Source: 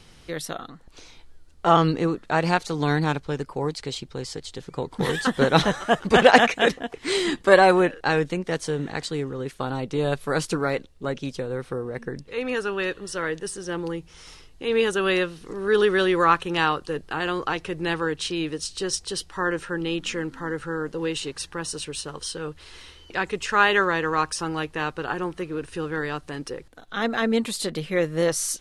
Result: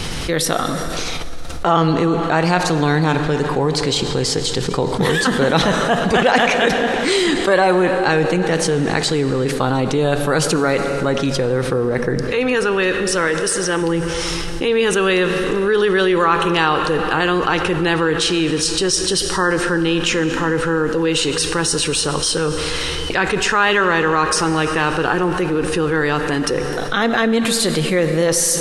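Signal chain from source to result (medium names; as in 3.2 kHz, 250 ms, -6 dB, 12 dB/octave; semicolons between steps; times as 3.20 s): 13.27–13.82 s: bass shelf 450 Hz -7 dB; plate-style reverb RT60 2.6 s, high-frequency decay 0.9×, pre-delay 0 ms, DRR 11 dB; level flattener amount 70%; trim -2 dB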